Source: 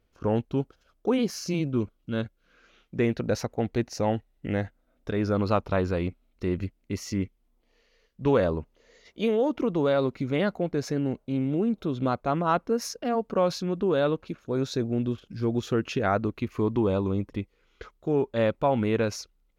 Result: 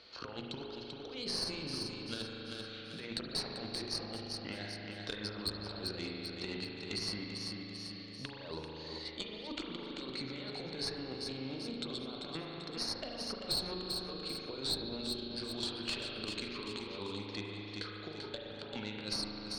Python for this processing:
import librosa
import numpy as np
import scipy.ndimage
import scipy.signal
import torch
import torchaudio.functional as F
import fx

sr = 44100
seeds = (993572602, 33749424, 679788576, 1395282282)

y = fx.highpass(x, sr, hz=170.0, slope=6)
y = fx.low_shelf(y, sr, hz=400.0, db=-9.5)
y = fx.hum_notches(y, sr, base_hz=60, count=7)
y = fx.over_compress(y, sr, threshold_db=-36.0, ratio=-0.5)
y = fx.ladder_lowpass(y, sr, hz=4500.0, resonance_pct=85)
y = fx.tube_stage(y, sr, drive_db=31.0, bias=0.75)
y = fx.echo_feedback(y, sr, ms=390, feedback_pct=34, wet_db=-8.0)
y = fx.rev_spring(y, sr, rt60_s=1.9, pass_ms=(38,), chirp_ms=35, drr_db=0.5)
y = fx.band_squash(y, sr, depth_pct=70)
y = y * librosa.db_to_amplitude(8.0)